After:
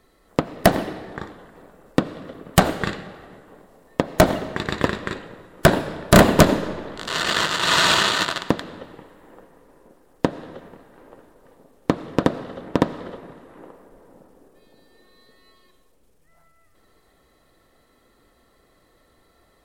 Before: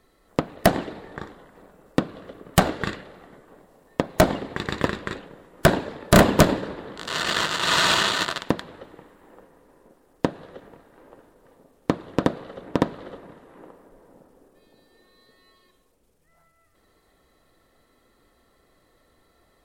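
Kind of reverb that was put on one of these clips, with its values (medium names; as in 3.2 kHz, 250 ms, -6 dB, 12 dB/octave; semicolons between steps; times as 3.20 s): algorithmic reverb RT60 1.6 s, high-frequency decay 0.8×, pre-delay 45 ms, DRR 15.5 dB; trim +2.5 dB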